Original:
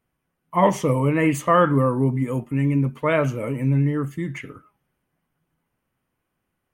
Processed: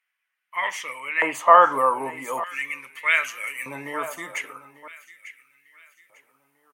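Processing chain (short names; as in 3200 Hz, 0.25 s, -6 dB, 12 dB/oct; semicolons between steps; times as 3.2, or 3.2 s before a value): feedback echo 0.896 s, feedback 39%, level -17.5 dB; LFO high-pass square 0.41 Hz 810–2000 Hz; high shelf 4400 Hz -7 dB, from 1.72 s +6.5 dB, from 3.47 s +12 dB; gain +2 dB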